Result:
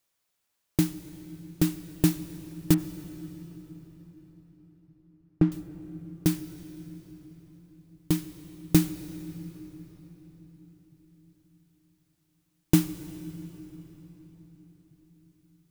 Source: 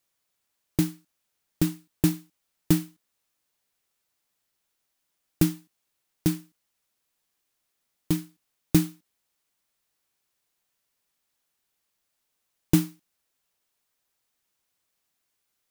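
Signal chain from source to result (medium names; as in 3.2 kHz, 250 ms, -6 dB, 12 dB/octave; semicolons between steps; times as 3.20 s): 2.74–5.52 s: low-pass 1.3 kHz 12 dB/octave; on a send: reverberation RT60 4.6 s, pre-delay 71 ms, DRR 12.5 dB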